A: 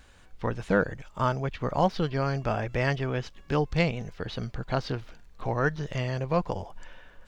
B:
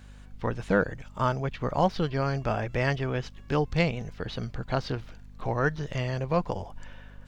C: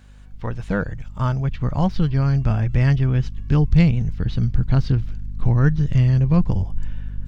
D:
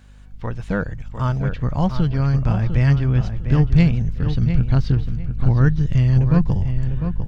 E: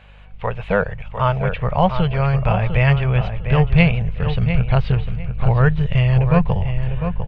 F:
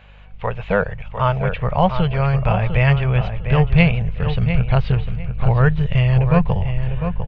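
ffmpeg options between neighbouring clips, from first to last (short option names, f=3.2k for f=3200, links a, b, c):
-af "aeval=exprs='val(0)+0.00447*(sin(2*PI*50*n/s)+sin(2*PI*2*50*n/s)/2+sin(2*PI*3*50*n/s)/3+sin(2*PI*4*50*n/s)/4+sin(2*PI*5*50*n/s)/5)':c=same"
-af "asubboost=boost=10:cutoff=190"
-filter_complex "[0:a]asplit=2[a][b];[b]adelay=701,lowpass=f=3k:p=1,volume=-8dB,asplit=2[c][d];[d]adelay=701,lowpass=f=3k:p=1,volume=0.25,asplit=2[e][f];[f]adelay=701,lowpass=f=3k:p=1,volume=0.25[g];[a][c][e][g]amix=inputs=4:normalize=0"
-af "firequalizer=gain_entry='entry(190,0);entry(280,-14);entry(420,6);entry(600,11);entry(990,9);entry(1600,5);entry(2500,14);entry(5500,-13)':delay=0.05:min_phase=1"
-af "aresample=16000,aresample=44100"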